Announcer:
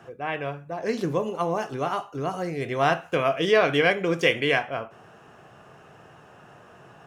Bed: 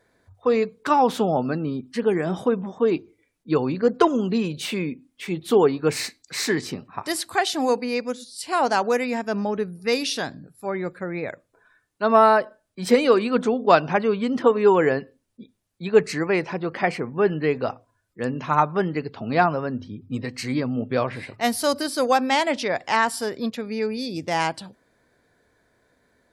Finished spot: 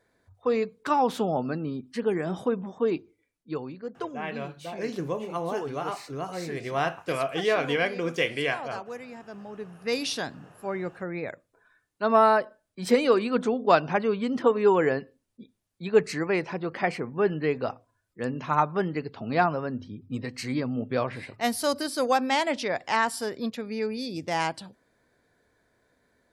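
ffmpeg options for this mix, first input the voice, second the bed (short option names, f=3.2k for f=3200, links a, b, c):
-filter_complex "[0:a]adelay=3950,volume=-5dB[a];[1:a]volume=8dB,afade=t=out:st=2.89:d=0.94:silence=0.251189,afade=t=in:st=9.49:d=0.55:silence=0.223872[b];[a][b]amix=inputs=2:normalize=0"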